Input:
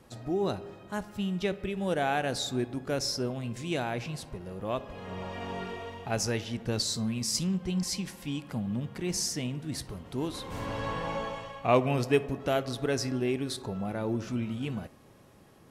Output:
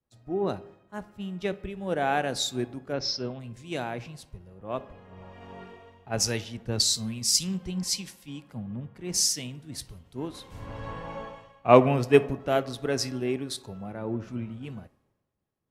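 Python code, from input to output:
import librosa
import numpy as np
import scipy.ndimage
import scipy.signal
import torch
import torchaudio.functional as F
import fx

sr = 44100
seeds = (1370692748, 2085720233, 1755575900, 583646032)

y = fx.steep_lowpass(x, sr, hz=5500.0, slope=48, at=(2.92, 3.39), fade=0.02)
y = fx.band_widen(y, sr, depth_pct=100)
y = y * librosa.db_to_amplitude(-1.0)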